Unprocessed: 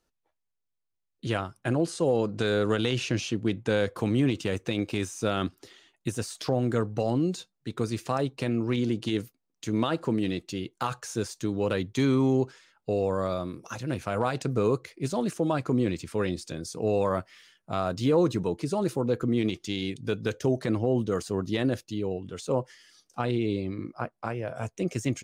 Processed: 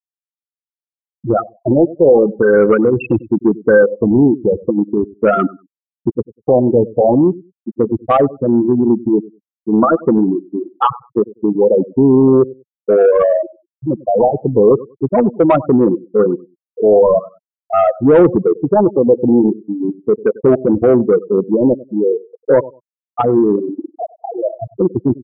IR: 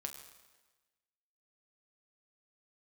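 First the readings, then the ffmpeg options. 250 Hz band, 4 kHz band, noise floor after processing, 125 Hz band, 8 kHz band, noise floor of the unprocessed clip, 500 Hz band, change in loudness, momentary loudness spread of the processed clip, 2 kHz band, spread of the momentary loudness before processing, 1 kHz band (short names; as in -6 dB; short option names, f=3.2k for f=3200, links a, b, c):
+14.0 dB, n/a, under -85 dBFS, +7.0 dB, under -40 dB, -81 dBFS, +16.5 dB, +15.0 dB, 11 LU, +8.5 dB, 9 LU, +14.5 dB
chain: -filter_complex "[0:a]lowshelf=f=120:g=-10,asplit=2[a][b];[1:a]atrim=start_sample=2205,lowpass=5.3k[c];[b][c]afir=irnorm=-1:irlink=0,volume=-1dB[d];[a][d]amix=inputs=2:normalize=0,afftfilt=real='re*gte(hypot(re,im),0.224)':imag='im*gte(hypot(re,im),0.224)':win_size=1024:overlap=0.75,aecho=1:1:97|194:0.0841|0.0135,apsyclip=14dB,lowshelf=f=300:g=-7,asoftclip=type=tanh:threshold=-2.5dB,acontrast=20,afftfilt=real='re*lt(b*sr/1024,910*pow(3900/910,0.5+0.5*sin(2*PI*0.4*pts/sr)))':imag='im*lt(b*sr/1024,910*pow(3900/910,0.5+0.5*sin(2*PI*0.4*pts/sr)))':win_size=1024:overlap=0.75,volume=-1dB"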